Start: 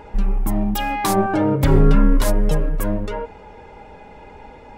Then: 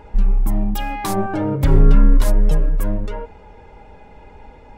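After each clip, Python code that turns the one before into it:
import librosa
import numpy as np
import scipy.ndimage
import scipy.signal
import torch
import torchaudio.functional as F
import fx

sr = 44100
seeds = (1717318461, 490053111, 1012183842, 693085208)

y = fx.low_shelf(x, sr, hz=97.0, db=9.0)
y = y * 10.0 ** (-4.0 / 20.0)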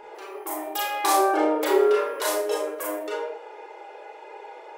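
y = fx.brickwall_highpass(x, sr, low_hz=320.0)
y = fx.rev_schroeder(y, sr, rt60_s=0.42, comb_ms=26, drr_db=-2.5)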